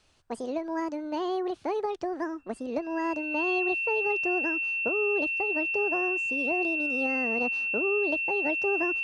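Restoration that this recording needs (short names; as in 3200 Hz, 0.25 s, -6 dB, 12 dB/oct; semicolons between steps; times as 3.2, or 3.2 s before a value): notch 2700 Hz, Q 30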